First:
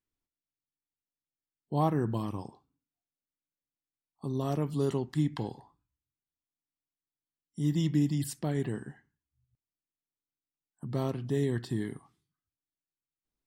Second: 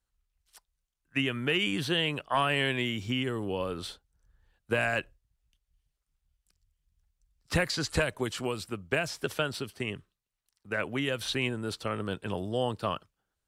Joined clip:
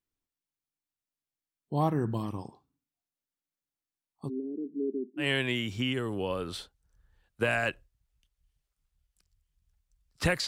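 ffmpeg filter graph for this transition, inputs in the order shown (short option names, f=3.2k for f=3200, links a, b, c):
-filter_complex "[0:a]asplit=3[a][b][c];[a]afade=t=out:st=4.28:d=0.02[d];[b]asuperpass=centerf=310:order=8:qfactor=1.6,afade=t=in:st=4.28:d=0.02,afade=t=out:st=5.27:d=0.02[e];[c]afade=t=in:st=5.27:d=0.02[f];[d][e][f]amix=inputs=3:normalize=0,apad=whole_dur=10.47,atrim=end=10.47,atrim=end=5.27,asetpts=PTS-STARTPTS[g];[1:a]atrim=start=2.47:end=7.77,asetpts=PTS-STARTPTS[h];[g][h]acrossfade=d=0.1:c1=tri:c2=tri"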